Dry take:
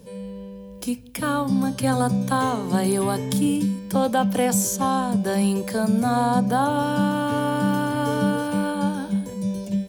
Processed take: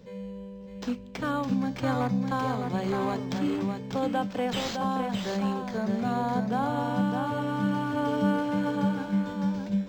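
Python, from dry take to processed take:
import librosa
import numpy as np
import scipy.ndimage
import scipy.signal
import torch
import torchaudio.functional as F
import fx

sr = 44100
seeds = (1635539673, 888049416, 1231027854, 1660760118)

y = fx.rider(x, sr, range_db=3, speed_s=2.0)
y = y + 10.0 ** (-5.5 / 20.0) * np.pad(y, (int(610 * sr / 1000.0), 0))[:len(y)]
y = np.interp(np.arange(len(y)), np.arange(len(y))[::4], y[::4])
y = y * librosa.db_to_amplitude(-7.0)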